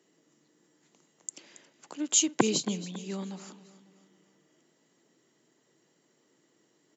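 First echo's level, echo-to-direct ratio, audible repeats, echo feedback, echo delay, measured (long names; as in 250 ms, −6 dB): −16.0 dB, −15.0 dB, 3, 47%, 275 ms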